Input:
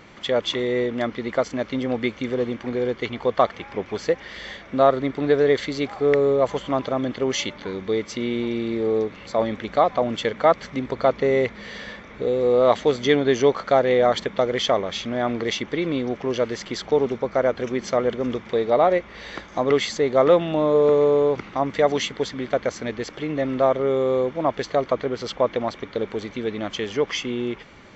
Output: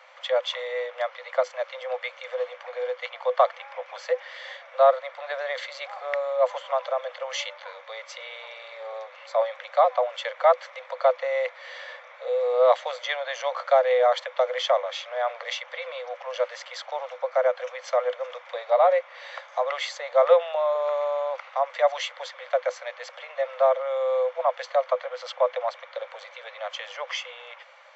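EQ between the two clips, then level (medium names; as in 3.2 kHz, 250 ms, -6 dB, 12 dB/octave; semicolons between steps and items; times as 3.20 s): Chebyshev high-pass 500 Hz, order 10; treble shelf 3.7 kHz -9 dB; 0.0 dB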